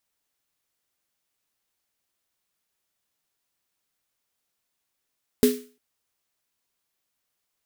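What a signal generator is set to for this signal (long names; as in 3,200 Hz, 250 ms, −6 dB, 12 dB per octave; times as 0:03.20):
synth snare length 0.35 s, tones 250 Hz, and 420 Hz, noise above 1,400 Hz, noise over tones −10.5 dB, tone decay 0.35 s, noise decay 0.38 s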